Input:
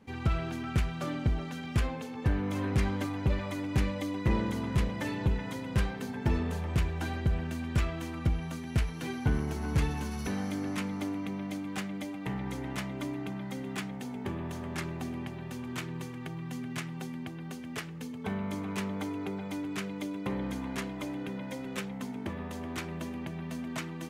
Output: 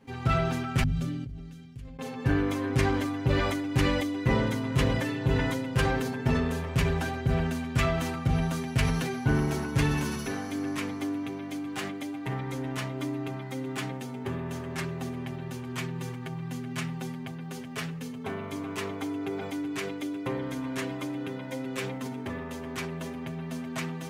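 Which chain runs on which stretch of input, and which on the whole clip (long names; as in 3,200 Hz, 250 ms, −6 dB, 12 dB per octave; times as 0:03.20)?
0:00.83–0:01.99: guitar amp tone stack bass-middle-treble 10-0-1 + downward compressor 3 to 1, threshold −40 dBFS
whole clip: mains-hum notches 50/100/150/200/250 Hz; comb filter 7.5 ms, depth 80%; level that may fall only so fast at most 29 dB per second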